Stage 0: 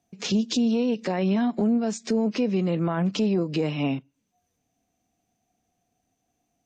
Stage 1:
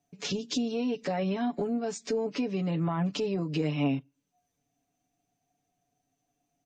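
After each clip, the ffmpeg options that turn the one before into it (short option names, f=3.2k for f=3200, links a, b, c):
-af "aecho=1:1:7:0.76,volume=-6dB"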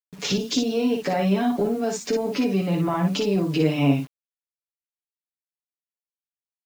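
-filter_complex "[0:a]asplit=2[a][b];[b]aecho=0:1:15|57:0.316|0.562[c];[a][c]amix=inputs=2:normalize=0,acrusher=bits=8:mix=0:aa=0.000001,volume=6.5dB"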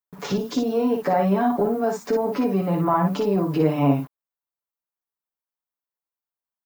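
-af "firequalizer=gain_entry='entry(270,0);entry(990,8);entry(2600,-9);entry(7000,-9);entry(15000,5)':delay=0.05:min_phase=1"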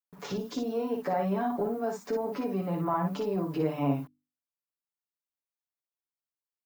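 -af "bandreject=f=50:t=h:w=6,bandreject=f=100:t=h:w=6,bandreject=f=150:t=h:w=6,bandreject=f=200:t=h:w=6,bandreject=f=250:t=h:w=6,bandreject=f=300:t=h:w=6,volume=-8.5dB"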